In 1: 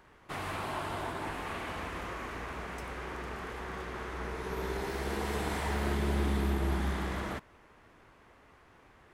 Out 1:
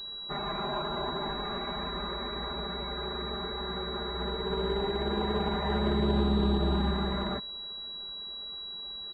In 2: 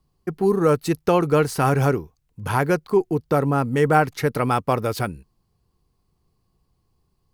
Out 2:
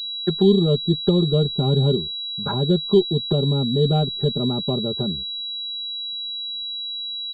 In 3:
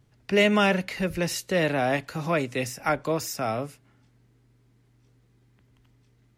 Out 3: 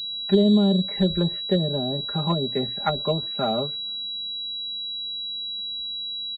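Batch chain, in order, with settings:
air absorption 140 m; treble ducked by the level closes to 320 Hz, closed at -20.5 dBFS; comb 5 ms, depth 87%; loudest bins only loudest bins 64; pulse-width modulation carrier 3900 Hz; gain +2.5 dB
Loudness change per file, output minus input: +4.0, 0.0, +1.5 LU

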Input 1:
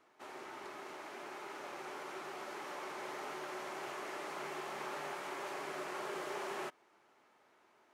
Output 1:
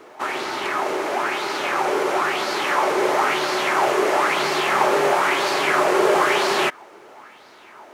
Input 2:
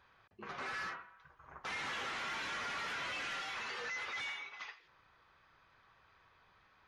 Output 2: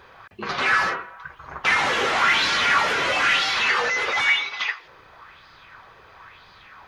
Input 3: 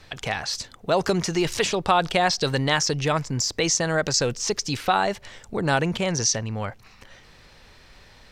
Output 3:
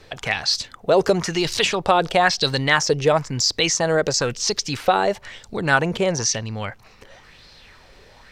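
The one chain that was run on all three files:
LFO bell 1 Hz 410–4600 Hz +10 dB; match loudness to -20 LUFS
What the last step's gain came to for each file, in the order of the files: +20.5, +17.0, 0.0 dB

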